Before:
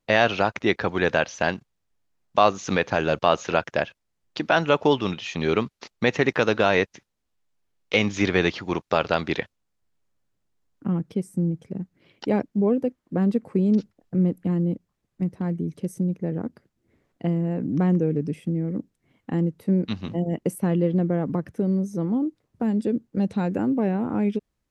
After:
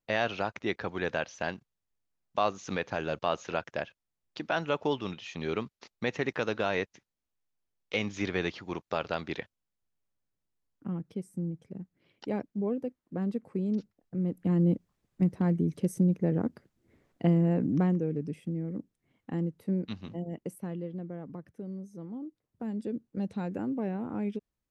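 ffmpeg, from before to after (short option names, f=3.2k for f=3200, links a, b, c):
-af "volume=7dB,afade=t=in:st=14.23:d=0.47:silence=0.316228,afade=t=out:st=17.55:d=0.41:silence=0.398107,afade=t=out:st=19.6:d=1.31:silence=0.375837,afade=t=in:st=22.12:d=0.96:silence=0.446684"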